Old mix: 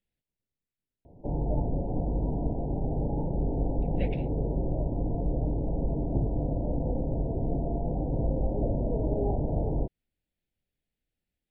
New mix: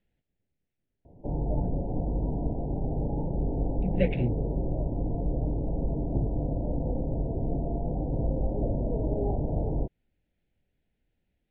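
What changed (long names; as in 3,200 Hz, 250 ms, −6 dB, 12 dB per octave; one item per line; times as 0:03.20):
speech +11.0 dB
master: add high-frequency loss of the air 330 metres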